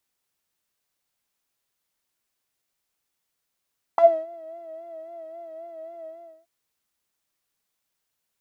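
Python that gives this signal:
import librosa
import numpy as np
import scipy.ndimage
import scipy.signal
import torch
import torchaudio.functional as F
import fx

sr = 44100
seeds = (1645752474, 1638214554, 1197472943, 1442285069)

y = fx.sub_patch_vibrato(sr, seeds[0], note=76, wave='triangle', wave2='saw', interval_st=0, detune_cents=12, level2_db=-13.5, sub_db=-23, noise_db=-23, kind='bandpass', cutoff_hz=430.0, q=4.8, env_oct=1.5, env_decay_s=0.11, env_sustain_pct=5, attack_ms=1.9, decay_s=0.28, sustain_db=-20.5, release_s=0.39, note_s=2.09, lfo_hz=3.7, vibrato_cents=59)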